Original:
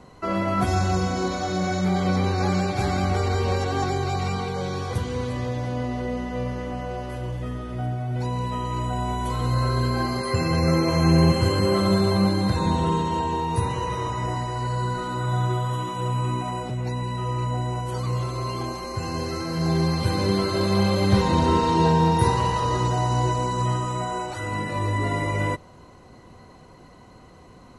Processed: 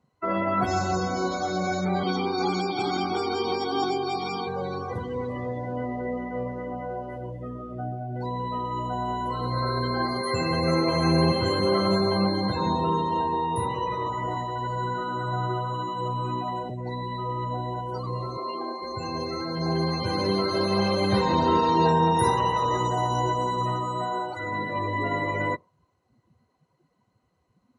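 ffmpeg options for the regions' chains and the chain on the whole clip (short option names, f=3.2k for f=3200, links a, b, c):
-filter_complex "[0:a]asettb=1/sr,asplit=3[a][b][c];[a]atrim=end=2.034[d];[b]atrim=start=2.03:end=4.47,asetpts=PTS-STARTPTS,afade=t=in:d=0.004:c=qsin,afade=t=out:st=2.436:d=0.004:c=qsin,highpass=270,equalizer=f=330:t=q:w=4:g=7,equalizer=f=510:t=q:w=4:g=6,equalizer=f=1.1k:t=q:w=4:g=-8,equalizer=f=2.1k:t=q:w=4:g=-8,equalizer=f=3.3k:t=q:w=4:g=6,equalizer=f=6.7k:t=q:w=4:g=-4,lowpass=f=8.1k:w=0.5412,lowpass=f=8.1k:w=1.3066,aecho=1:1:0.9:0.91,atrim=end_sample=107604[e];[c]atrim=start=4.466[f];[d][e]acrossfade=d=0.004:c1=hsin:c2=qsin[g];[g][f]acrossfade=d=0.004:c1=qsin:c2=hsin,asettb=1/sr,asplit=3[h][i][j];[h]atrim=end=18.374[k];[i]atrim=start=18.37:end=18.82,asetpts=PTS-STARTPTS,afade=t=in:d=0.004:c=qsin,afade=t=out:st=0.446:d=0.004:c=qsin,highpass=f=220:w=0.5412,highpass=f=220:w=1.3066,highshelf=f=5.9k:g=-6.5,bandreject=f=3.9k:w=25[l];[j]atrim=start=18.816[m];[k][l]acrossfade=d=0.004:c1=hsin:c2=qsin[n];[n][m]acrossfade=d=0.004:c1=qsin:c2=hsin,asettb=1/sr,asplit=3[o][p][q];[o]atrim=end=21.874[r];[p]atrim=start=21.87:end=23.22,asetpts=PTS-STARTPTS,afade=t=in:d=0.004:c=qsin,afade=t=out:st=1.346:d=0.004:c=qsin,asuperstop=centerf=4500:order=4:qfactor=5.7,highshelf=f=5.6k:g=2[s];[q]atrim=start=23.216[t];[r][s]acrossfade=d=0.004:c1=hsin:c2=qsin[u];[u][t]acrossfade=d=0.004:c1=qsin:c2=hsin,afftdn=nr=24:nf=-33,highpass=f=290:p=1,volume=1dB"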